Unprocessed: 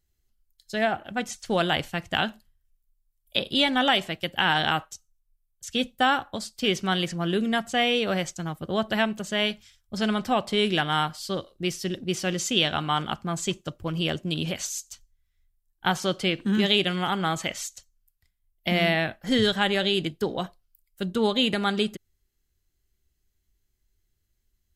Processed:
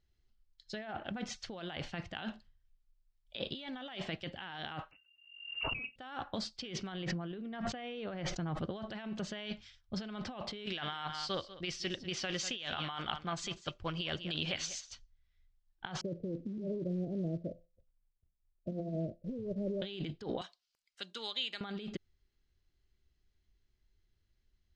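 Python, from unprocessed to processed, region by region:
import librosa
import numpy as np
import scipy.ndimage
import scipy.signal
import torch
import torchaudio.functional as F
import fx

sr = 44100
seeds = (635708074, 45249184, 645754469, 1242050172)

y = fx.chain(x, sr, fx.notch_comb(f0_hz=200.0),
    fx.freq_invert(carrier_hz=2800),
    fx.pre_swell(db_per_s=66.0), at=(4.91, 5.96))
y = fx.chain(y, sr, fx.lowpass(hz=1700.0, slope=6),
    fx.sustainer(db_per_s=82.0), at=(6.92, 8.61))
y = fx.chain(y, sr, fx.peak_eq(hz=220.0, db=-10.5, octaves=2.8),
    fx.echo_single(ms=195, db=-16.0), at=(10.66, 14.91))
y = fx.chain(y, sr, fx.steep_lowpass(hz=630.0, slope=96),
    fx.comb_fb(f0_hz=170.0, decay_s=0.27, harmonics='all', damping=0.0, mix_pct=50),
    fx.quant_float(bits=4), at=(16.01, 19.82))
y = fx.chain(y, sr, fx.differentiator(),
    fx.band_squash(depth_pct=70), at=(20.41, 21.61))
y = scipy.signal.sosfilt(scipy.signal.butter(4, 5200.0, 'lowpass', fs=sr, output='sos'), y)
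y = fx.over_compress(y, sr, threshold_db=-33.0, ratio=-1.0)
y = F.gain(torch.from_numpy(y), -6.5).numpy()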